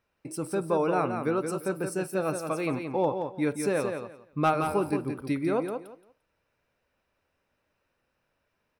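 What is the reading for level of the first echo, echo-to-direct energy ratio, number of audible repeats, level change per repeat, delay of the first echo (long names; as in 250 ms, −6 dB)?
−6.5 dB, −6.5 dB, 3, −14.0 dB, 173 ms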